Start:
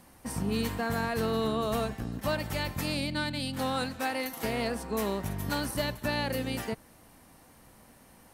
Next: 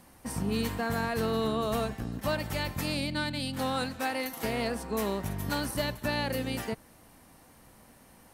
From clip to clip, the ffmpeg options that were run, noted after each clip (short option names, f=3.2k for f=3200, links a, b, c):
-af anull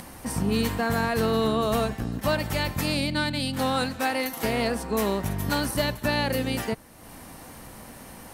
-af "acompressor=mode=upward:threshold=-40dB:ratio=2.5,volume=5.5dB"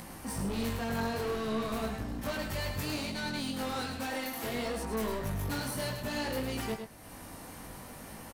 -filter_complex "[0:a]asoftclip=type=tanh:threshold=-29dB,flanger=delay=18:depth=4.3:speed=0.6,asplit=2[a][b];[b]aecho=0:1:105:0.447[c];[a][c]amix=inputs=2:normalize=0"